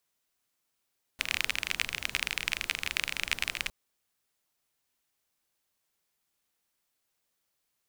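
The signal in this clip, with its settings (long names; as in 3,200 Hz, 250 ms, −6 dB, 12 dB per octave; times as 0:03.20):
rain-like ticks over hiss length 2.51 s, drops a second 29, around 2,400 Hz, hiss −13.5 dB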